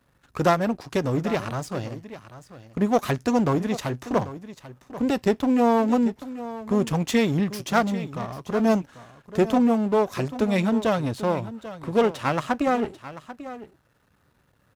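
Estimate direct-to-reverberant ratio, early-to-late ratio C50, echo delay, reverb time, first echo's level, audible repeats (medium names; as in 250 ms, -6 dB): no reverb, no reverb, 791 ms, no reverb, -14.5 dB, 1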